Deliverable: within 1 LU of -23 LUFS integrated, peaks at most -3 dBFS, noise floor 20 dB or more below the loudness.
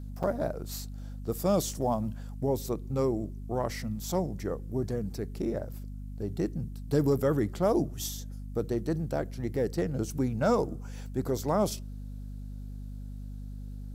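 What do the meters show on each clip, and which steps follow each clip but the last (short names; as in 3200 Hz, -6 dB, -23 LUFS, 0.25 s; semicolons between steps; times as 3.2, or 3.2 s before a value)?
dropouts 1; longest dropout 5.7 ms; hum 50 Hz; harmonics up to 250 Hz; hum level -37 dBFS; loudness -31.5 LUFS; peak -14.5 dBFS; loudness target -23.0 LUFS
-> interpolate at 0.23, 5.7 ms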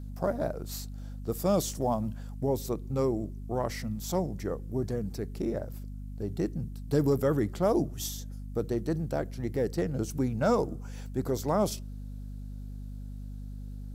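dropouts 0; hum 50 Hz; harmonics up to 250 Hz; hum level -37 dBFS
-> de-hum 50 Hz, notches 5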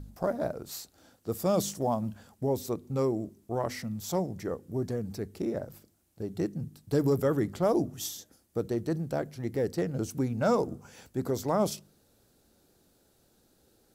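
hum none; loudness -31.5 LUFS; peak -14.5 dBFS; loudness target -23.0 LUFS
-> gain +8.5 dB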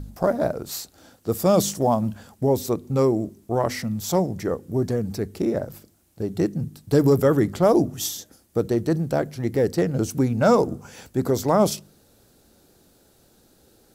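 loudness -23.0 LUFS; peak -6.0 dBFS; noise floor -59 dBFS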